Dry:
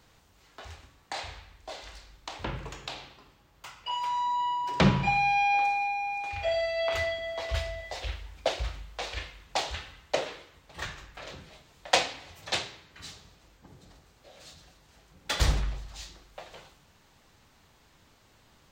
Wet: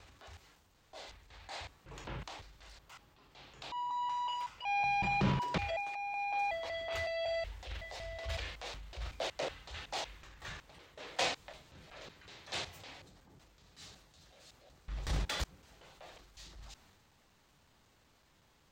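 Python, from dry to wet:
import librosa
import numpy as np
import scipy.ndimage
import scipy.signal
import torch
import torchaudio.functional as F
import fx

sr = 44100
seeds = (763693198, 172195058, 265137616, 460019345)

y = fx.block_reorder(x, sr, ms=186.0, group=5)
y = fx.transient(y, sr, attack_db=-6, sustain_db=5)
y = y * librosa.db_to_amplitude(-7.0)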